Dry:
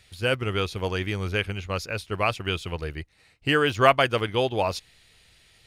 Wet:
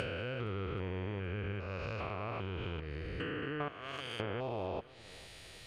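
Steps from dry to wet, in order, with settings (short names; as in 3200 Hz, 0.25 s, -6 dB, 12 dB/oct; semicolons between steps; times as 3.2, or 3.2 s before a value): stepped spectrum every 0.4 s; 3.68–4.2 pre-emphasis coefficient 0.9; treble ducked by the level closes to 2100 Hz, closed at -28.5 dBFS; compressor 3:1, threshold -46 dBFS, peak gain reduction 17 dB; swung echo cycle 0.778 s, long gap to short 1.5:1, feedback 50%, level -22 dB; gain +6 dB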